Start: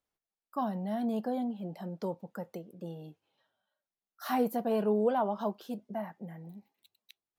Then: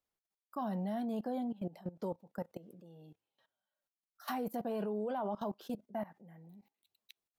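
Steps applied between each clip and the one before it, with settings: level held to a coarse grid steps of 19 dB; trim +2 dB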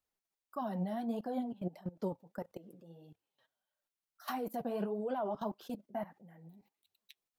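flange 1.6 Hz, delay 0.6 ms, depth 7.8 ms, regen +40%; trim +4 dB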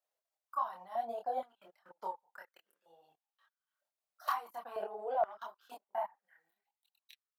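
transient shaper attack +3 dB, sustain -11 dB; chorus voices 4, 0.63 Hz, delay 26 ms, depth 1.4 ms; step-sequenced high-pass 2.1 Hz 610–1600 Hz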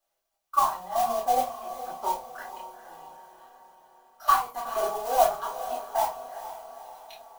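modulation noise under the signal 13 dB; echo that smears into a reverb 458 ms, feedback 53%, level -12 dB; reverberation RT60 0.25 s, pre-delay 3 ms, DRR -3.5 dB; trim +4 dB

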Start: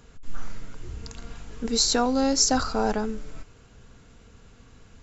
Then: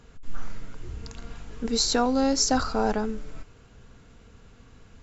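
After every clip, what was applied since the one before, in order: treble shelf 6.7 kHz -7 dB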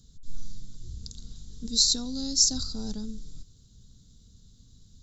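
FFT filter 180 Hz 0 dB, 670 Hz -23 dB, 2.6 kHz -23 dB, 3.7 kHz +6 dB; trim -2.5 dB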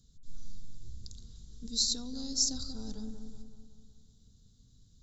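bucket-brigade echo 186 ms, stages 2048, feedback 55%, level -7 dB; trim -7.5 dB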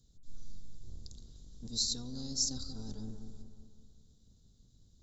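octave divider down 1 oct, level -2 dB; trim -3.5 dB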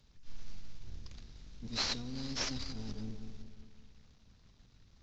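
CVSD coder 32 kbps; trim +1 dB

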